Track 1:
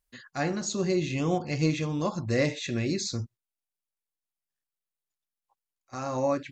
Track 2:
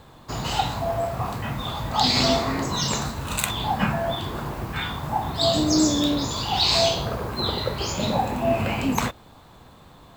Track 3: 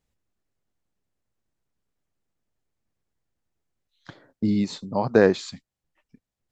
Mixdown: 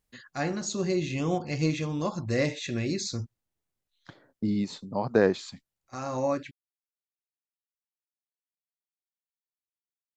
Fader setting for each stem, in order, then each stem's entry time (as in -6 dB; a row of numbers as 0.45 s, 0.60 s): -1.0 dB, mute, -5.0 dB; 0.00 s, mute, 0.00 s